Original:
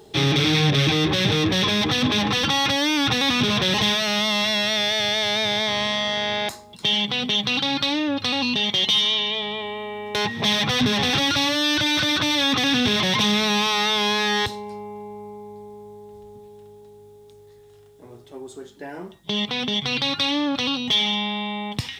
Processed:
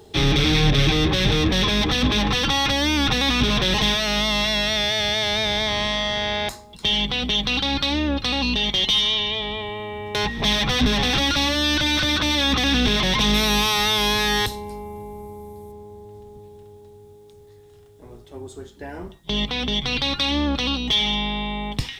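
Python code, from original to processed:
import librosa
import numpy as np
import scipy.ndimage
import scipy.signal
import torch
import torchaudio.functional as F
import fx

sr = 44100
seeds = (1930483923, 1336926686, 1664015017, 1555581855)

y = fx.octave_divider(x, sr, octaves=2, level_db=-1.0)
y = fx.peak_eq(y, sr, hz=12000.0, db=13.5, octaves=0.94, at=(13.34, 15.72))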